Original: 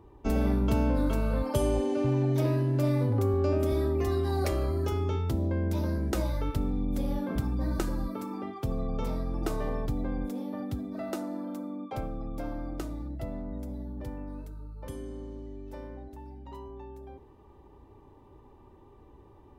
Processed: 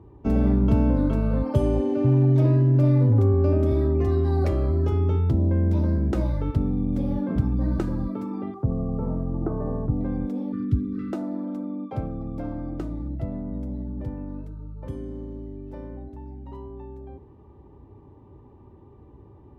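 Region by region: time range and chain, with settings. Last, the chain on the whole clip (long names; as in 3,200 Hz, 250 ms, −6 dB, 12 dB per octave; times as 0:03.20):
0:08.54–0:10.01: low-pass filter 1,300 Hz 24 dB per octave + bit-depth reduction 12 bits, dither triangular
0:10.52–0:11.13: phase distortion by the signal itself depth 0.11 ms + linear-phase brick-wall band-stop 490–1,100 Hz + low-shelf EQ 100 Hz +10 dB
whole clip: high-pass filter 110 Hz 12 dB per octave; RIAA equalisation playback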